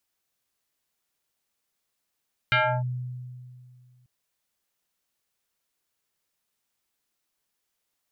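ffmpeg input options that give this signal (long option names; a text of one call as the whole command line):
ffmpeg -f lavfi -i "aevalsrc='0.141*pow(10,-3*t/2.26)*sin(2*PI*125*t+3.7*clip(1-t/0.31,0,1)*sin(2*PI*5.98*125*t))':duration=1.54:sample_rate=44100" out.wav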